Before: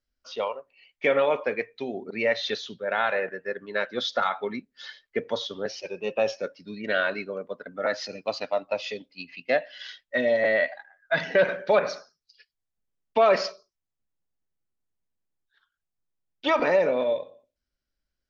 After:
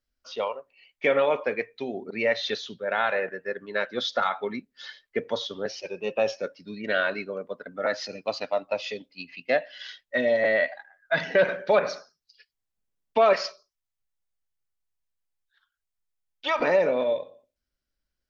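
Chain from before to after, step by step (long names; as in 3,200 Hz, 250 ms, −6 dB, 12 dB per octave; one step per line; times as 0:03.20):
0:13.33–0:16.61: parametric band 250 Hz −13 dB 2.1 octaves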